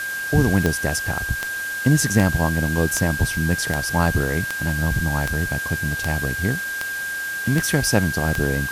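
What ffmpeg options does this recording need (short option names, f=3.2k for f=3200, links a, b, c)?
-af "adeclick=t=4,bandreject=f=1.6k:w=30,afwtdn=0.018"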